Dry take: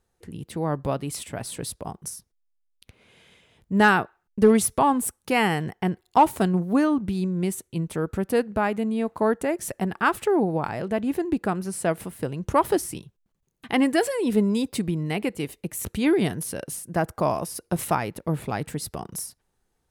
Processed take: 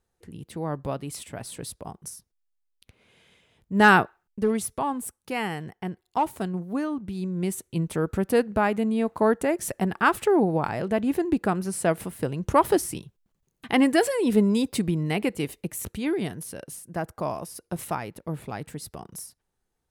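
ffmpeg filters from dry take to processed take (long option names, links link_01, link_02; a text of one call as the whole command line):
ffmpeg -i in.wav -af "volume=12.5dB,afade=type=in:start_time=3.74:duration=0.21:silence=0.398107,afade=type=out:start_time=3.95:duration=0.47:silence=0.266073,afade=type=in:start_time=7.06:duration=0.69:silence=0.375837,afade=type=out:start_time=15.55:duration=0.47:silence=0.446684" out.wav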